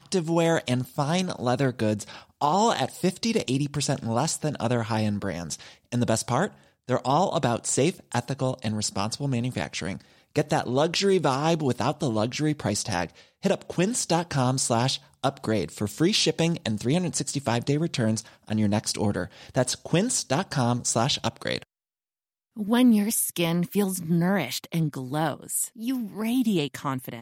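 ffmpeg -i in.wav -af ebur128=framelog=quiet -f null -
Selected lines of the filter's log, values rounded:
Integrated loudness:
  I:         -25.9 LUFS
  Threshold: -36.0 LUFS
Loudness range:
  LRA:         2.1 LU
  Threshold: -46.0 LUFS
  LRA low:   -27.1 LUFS
  LRA high:  -25.0 LUFS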